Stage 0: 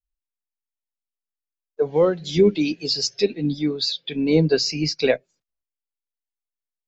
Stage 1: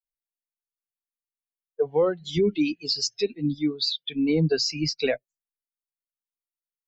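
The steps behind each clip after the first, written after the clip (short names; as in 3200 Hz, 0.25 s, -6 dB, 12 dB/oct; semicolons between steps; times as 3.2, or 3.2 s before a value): per-bin expansion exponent 1.5; limiter -14 dBFS, peak gain reduction 7 dB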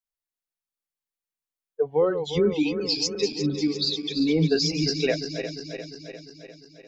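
regenerating reverse delay 0.175 s, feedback 77%, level -9 dB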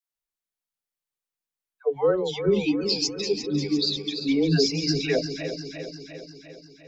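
dispersion lows, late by 0.116 s, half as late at 550 Hz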